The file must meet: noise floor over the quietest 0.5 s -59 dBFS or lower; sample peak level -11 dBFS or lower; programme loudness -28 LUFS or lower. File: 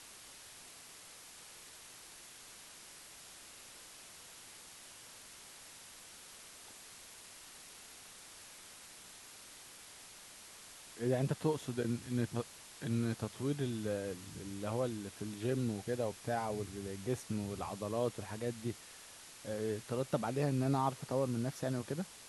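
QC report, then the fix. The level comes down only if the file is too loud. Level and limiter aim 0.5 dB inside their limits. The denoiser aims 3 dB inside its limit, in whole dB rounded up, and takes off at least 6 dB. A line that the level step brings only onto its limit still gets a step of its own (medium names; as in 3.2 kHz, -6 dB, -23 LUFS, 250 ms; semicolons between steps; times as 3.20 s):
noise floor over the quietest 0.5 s -54 dBFS: fail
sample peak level -19.0 dBFS: pass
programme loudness -38.0 LUFS: pass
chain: noise reduction 8 dB, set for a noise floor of -54 dBFS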